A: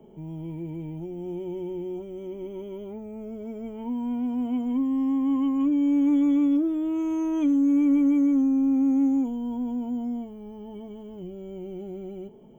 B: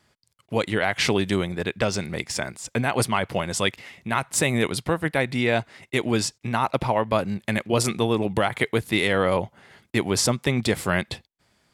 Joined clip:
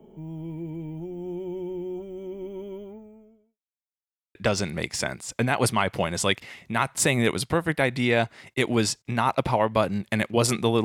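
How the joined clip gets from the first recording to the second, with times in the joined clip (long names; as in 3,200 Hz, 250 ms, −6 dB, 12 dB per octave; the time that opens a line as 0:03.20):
A
0:02.73–0:03.59: fade out quadratic
0:03.59–0:04.35: silence
0:04.35: continue with B from 0:01.71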